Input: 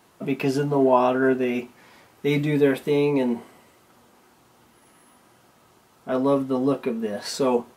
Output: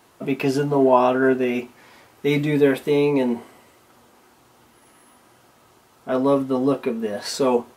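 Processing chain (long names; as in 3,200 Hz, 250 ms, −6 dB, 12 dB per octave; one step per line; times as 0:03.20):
parametric band 180 Hz −6 dB 0.39 octaves
level +2.5 dB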